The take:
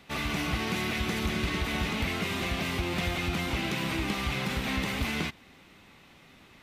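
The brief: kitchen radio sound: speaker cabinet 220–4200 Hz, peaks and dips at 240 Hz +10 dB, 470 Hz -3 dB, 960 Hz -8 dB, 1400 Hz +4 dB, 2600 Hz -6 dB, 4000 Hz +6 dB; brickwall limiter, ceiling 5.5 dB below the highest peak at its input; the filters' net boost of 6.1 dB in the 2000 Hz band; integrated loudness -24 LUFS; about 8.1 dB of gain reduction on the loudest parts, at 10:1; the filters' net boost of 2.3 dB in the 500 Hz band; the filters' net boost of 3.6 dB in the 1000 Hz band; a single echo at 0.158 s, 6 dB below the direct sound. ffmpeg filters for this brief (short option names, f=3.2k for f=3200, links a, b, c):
-af "equalizer=f=500:t=o:g=3.5,equalizer=f=1k:t=o:g=3.5,equalizer=f=2k:t=o:g=7.5,acompressor=threshold=-31dB:ratio=10,alimiter=level_in=3dB:limit=-24dB:level=0:latency=1,volume=-3dB,highpass=220,equalizer=f=240:t=q:w=4:g=10,equalizer=f=470:t=q:w=4:g=-3,equalizer=f=960:t=q:w=4:g=-8,equalizer=f=1.4k:t=q:w=4:g=4,equalizer=f=2.6k:t=q:w=4:g=-6,equalizer=f=4k:t=q:w=4:g=6,lowpass=f=4.2k:w=0.5412,lowpass=f=4.2k:w=1.3066,aecho=1:1:158:0.501,volume=11.5dB"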